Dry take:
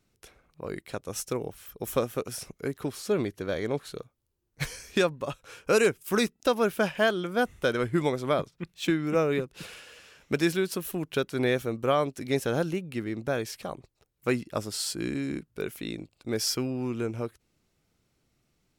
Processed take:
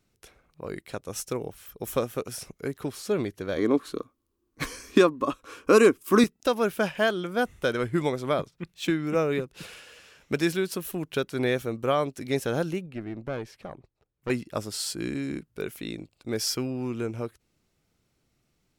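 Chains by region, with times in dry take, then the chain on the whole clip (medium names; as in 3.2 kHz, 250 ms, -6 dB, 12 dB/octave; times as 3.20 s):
3.57–6.24 s: peaking EQ 140 Hz -10 dB 0.56 oct + small resonant body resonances 280/1100 Hz, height 14 dB, ringing for 25 ms
12.86–14.30 s: low-pass 1.7 kHz 6 dB/octave + valve stage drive 24 dB, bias 0.55
whole clip: none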